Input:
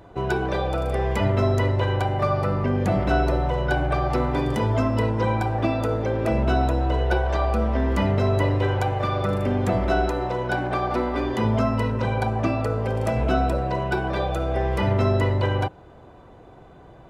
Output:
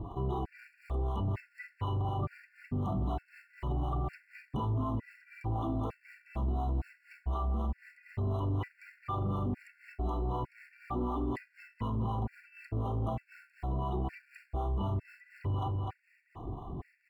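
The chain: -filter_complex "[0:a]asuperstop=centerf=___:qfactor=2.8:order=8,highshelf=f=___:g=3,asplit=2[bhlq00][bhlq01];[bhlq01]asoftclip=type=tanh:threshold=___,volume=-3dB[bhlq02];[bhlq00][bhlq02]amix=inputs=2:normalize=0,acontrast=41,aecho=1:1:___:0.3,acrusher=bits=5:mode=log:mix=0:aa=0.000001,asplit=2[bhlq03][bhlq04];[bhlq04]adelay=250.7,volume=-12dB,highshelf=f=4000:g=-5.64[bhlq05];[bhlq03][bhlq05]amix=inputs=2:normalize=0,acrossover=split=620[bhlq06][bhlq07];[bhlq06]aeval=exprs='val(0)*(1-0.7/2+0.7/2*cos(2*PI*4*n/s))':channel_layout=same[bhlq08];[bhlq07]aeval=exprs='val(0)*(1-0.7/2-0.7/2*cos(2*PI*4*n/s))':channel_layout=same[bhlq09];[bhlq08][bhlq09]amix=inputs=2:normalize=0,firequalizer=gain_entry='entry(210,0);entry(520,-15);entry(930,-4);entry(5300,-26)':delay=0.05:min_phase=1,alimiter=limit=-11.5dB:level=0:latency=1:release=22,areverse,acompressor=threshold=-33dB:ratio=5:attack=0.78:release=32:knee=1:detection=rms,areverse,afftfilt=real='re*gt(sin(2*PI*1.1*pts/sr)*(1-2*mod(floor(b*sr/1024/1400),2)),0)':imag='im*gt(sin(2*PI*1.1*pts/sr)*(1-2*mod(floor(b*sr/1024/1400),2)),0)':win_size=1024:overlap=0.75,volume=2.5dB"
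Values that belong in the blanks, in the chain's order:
1500, 4100, -19.5dB, 2.7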